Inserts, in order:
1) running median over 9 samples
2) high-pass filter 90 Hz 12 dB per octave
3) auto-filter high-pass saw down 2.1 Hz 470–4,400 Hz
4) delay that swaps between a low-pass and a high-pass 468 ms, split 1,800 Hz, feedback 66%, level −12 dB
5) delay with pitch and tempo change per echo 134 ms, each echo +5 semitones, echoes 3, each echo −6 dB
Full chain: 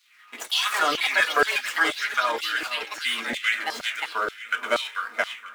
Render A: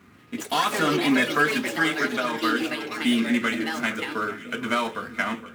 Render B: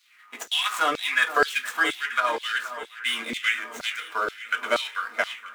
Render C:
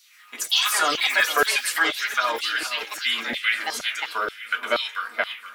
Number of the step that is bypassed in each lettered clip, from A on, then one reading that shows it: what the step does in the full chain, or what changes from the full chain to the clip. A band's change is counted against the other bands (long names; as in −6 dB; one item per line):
3, 250 Hz band +18.0 dB
5, 8 kHz band −2.0 dB
1, 8 kHz band +7.0 dB